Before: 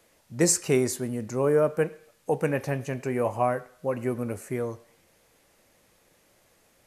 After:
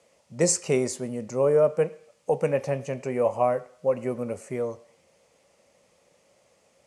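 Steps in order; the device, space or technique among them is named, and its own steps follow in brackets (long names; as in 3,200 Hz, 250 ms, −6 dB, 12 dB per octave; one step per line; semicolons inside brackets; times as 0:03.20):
car door speaker (loudspeaker in its box 84–9,000 Hz, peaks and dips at 110 Hz −5 dB, 310 Hz −7 dB, 550 Hz +7 dB, 1,600 Hz −8 dB, 3,800 Hz −4 dB)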